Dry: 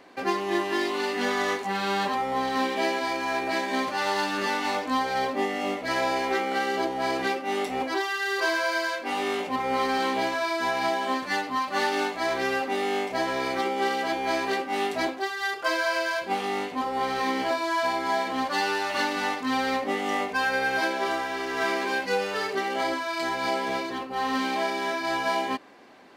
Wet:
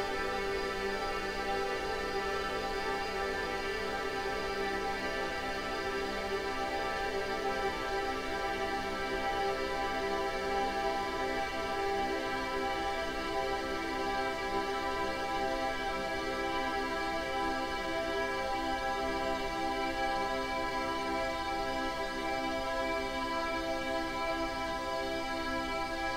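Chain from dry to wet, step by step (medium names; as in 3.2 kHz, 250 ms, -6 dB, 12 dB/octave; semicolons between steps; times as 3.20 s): Paulstretch 49×, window 1.00 s, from 22.46 s; added noise brown -39 dBFS; trim -6.5 dB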